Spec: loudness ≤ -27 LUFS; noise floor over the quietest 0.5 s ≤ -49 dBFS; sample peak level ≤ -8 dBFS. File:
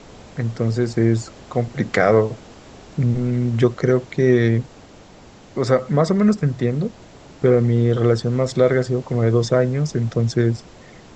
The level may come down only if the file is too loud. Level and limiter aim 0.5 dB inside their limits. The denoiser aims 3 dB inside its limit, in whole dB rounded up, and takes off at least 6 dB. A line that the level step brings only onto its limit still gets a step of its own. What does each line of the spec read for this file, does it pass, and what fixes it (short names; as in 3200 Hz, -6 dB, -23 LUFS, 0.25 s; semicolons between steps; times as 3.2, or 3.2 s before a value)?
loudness -19.5 LUFS: fail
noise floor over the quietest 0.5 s -45 dBFS: fail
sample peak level -4.0 dBFS: fail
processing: gain -8 dB